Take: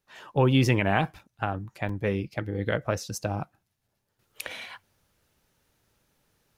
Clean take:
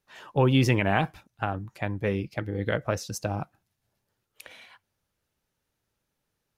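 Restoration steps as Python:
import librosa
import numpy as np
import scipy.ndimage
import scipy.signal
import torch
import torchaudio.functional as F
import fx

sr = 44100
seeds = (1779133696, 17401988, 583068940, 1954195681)

y = fx.fix_interpolate(x, sr, at_s=(1.19, 1.89, 3.88), length_ms=4.0)
y = fx.gain(y, sr, db=fx.steps((0.0, 0.0), (4.19, -10.0)))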